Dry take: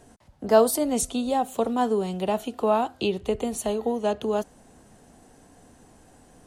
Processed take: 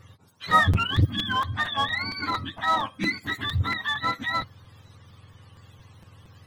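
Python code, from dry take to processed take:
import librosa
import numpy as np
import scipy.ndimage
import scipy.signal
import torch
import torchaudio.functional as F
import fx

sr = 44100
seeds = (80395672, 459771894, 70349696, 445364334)

p1 = fx.octave_mirror(x, sr, pivot_hz=910.0)
p2 = fx.high_shelf(p1, sr, hz=10000.0, db=-11.0)
p3 = 10.0 ** (-24.5 / 20.0) * (np.abs((p2 / 10.0 ** (-24.5 / 20.0) + 3.0) % 4.0 - 2.0) - 1.0)
p4 = p2 + (p3 * librosa.db_to_amplitude(-11.5))
p5 = fx.buffer_crackle(p4, sr, first_s=0.5, period_s=0.23, block=256, kind='repeat')
y = fx.transformer_sat(p5, sr, knee_hz=150.0)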